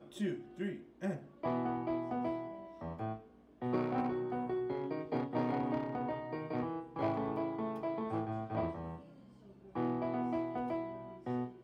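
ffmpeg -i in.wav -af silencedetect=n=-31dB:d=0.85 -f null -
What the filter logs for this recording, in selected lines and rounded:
silence_start: 8.69
silence_end: 9.77 | silence_duration: 1.07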